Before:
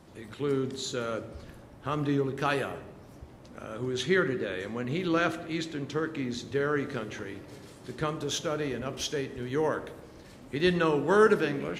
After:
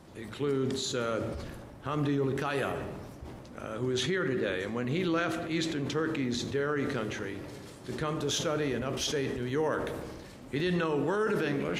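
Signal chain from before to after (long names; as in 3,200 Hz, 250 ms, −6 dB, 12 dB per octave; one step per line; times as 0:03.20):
brickwall limiter −22 dBFS, peak gain reduction 12 dB
level that may fall only so fast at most 32 dB per second
level +1 dB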